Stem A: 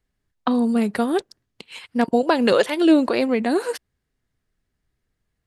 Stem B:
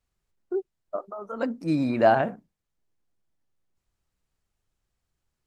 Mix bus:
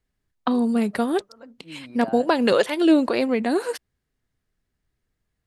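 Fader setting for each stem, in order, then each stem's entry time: −1.5, −17.5 decibels; 0.00, 0.00 seconds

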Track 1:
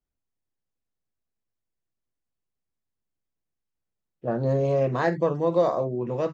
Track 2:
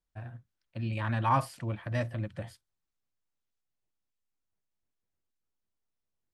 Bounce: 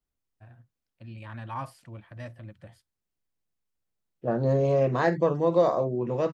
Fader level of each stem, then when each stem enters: 0.0, −9.0 decibels; 0.00, 0.25 seconds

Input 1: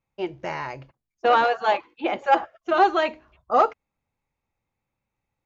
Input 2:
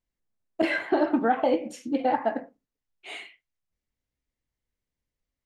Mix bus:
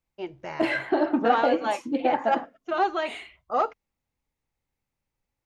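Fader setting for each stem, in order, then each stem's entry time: −6.0, 0.0 decibels; 0.00, 0.00 seconds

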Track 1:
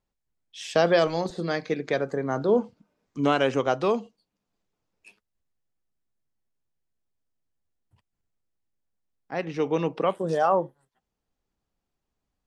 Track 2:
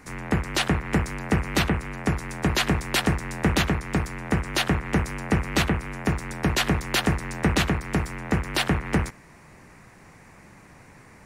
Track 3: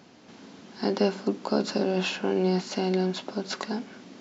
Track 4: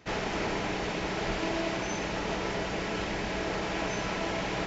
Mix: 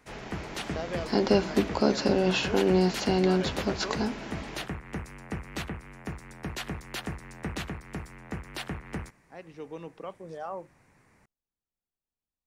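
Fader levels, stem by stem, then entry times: −15.5, −13.0, +1.5, −10.5 decibels; 0.00, 0.00, 0.30, 0.00 seconds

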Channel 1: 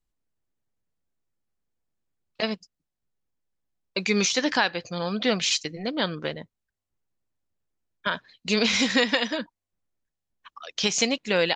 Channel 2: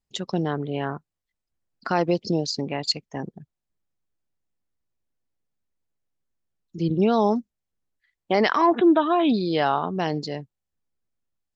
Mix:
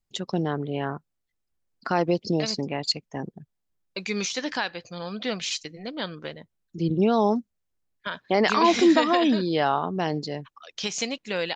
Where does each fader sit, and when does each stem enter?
−5.5, −1.0 decibels; 0.00, 0.00 seconds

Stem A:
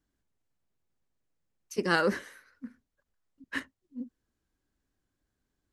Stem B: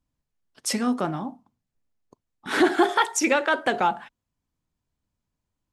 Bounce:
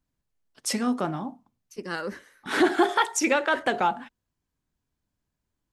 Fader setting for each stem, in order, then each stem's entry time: −6.5, −1.5 decibels; 0.00, 0.00 seconds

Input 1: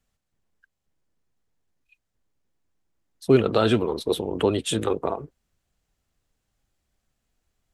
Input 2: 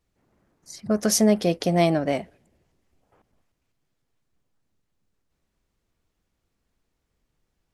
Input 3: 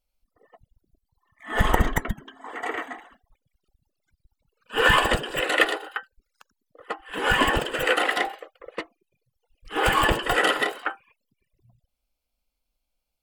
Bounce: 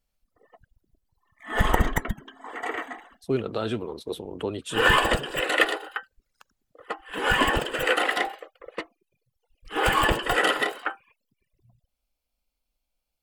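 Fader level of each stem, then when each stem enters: −8.5 dB, muted, −1.0 dB; 0.00 s, muted, 0.00 s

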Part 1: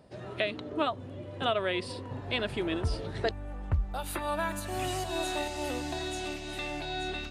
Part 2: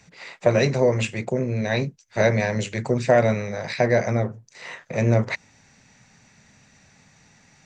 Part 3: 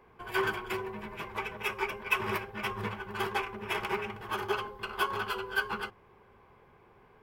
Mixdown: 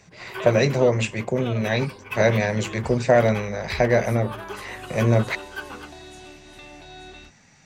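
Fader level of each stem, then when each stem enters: −7.5, +0.5, −4.5 decibels; 0.00, 0.00, 0.00 seconds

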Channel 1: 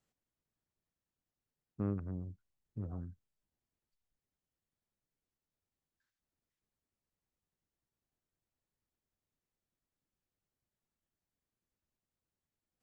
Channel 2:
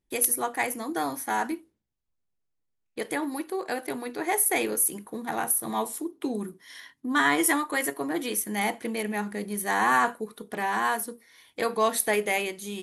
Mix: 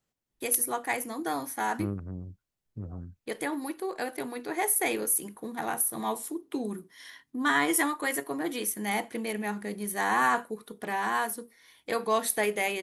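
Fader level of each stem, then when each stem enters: +2.5, −2.5 decibels; 0.00, 0.30 seconds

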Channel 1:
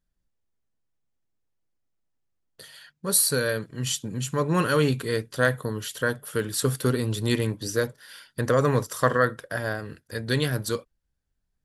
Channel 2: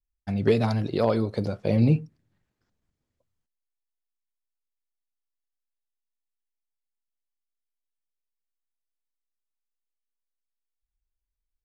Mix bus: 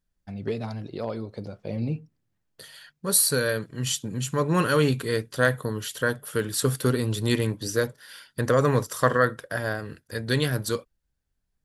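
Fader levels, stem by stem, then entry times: +0.5, −8.5 decibels; 0.00, 0.00 seconds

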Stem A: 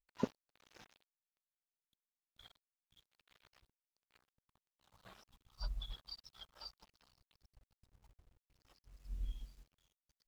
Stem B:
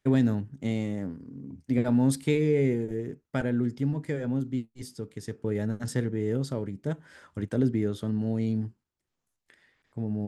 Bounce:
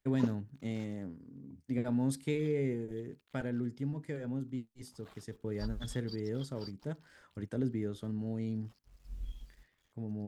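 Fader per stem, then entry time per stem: 0.0, −8.5 decibels; 0.00, 0.00 seconds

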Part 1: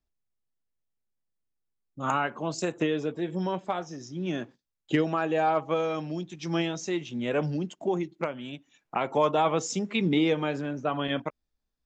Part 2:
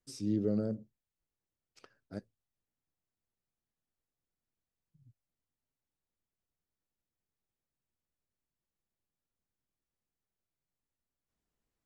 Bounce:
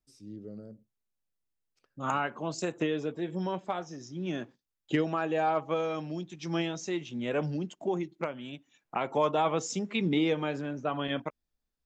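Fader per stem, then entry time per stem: −3.0, −12.5 decibels; 0.00, 0.00 seconds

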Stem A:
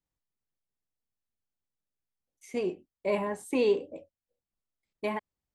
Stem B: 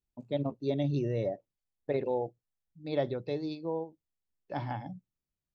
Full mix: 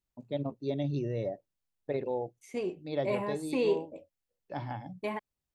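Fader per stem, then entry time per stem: −3.0, −2.0 decibels; 0.00, 0.00 seconds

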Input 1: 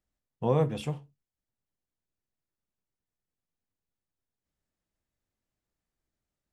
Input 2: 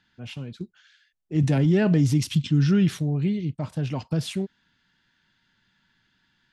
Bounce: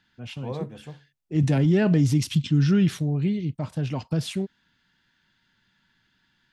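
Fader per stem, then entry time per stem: −8.0, 0.0 decibels; 0.00, 0.00 seconds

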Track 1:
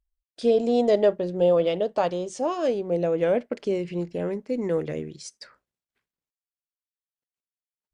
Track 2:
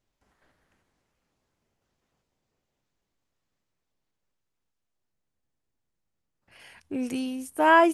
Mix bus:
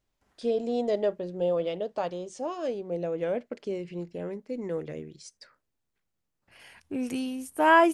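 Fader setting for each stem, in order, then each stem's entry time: −7.0, −1.0 decibels; 0.00, 0.00 seconds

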